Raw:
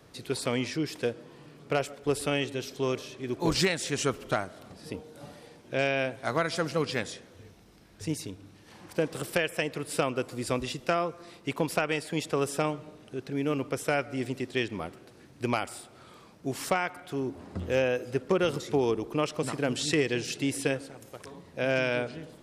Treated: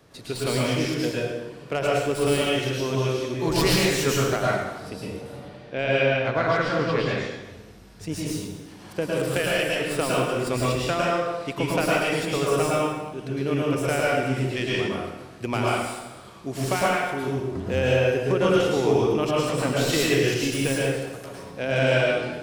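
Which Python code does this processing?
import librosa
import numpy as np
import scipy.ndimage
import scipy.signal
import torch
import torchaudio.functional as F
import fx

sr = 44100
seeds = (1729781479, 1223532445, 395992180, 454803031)

y = fx.tracing_dist(x, sr, depth_ms=0.056)
y = fx.lowpass(y, sr, hz=3600.0, slope=12, at=(5.21, 7.31))
y = fx.rev_plate(y, sr, seeds[0], rt60_s=1.1, hf_ratio=0.85, predelay_ms=95, drr_db=-5.5)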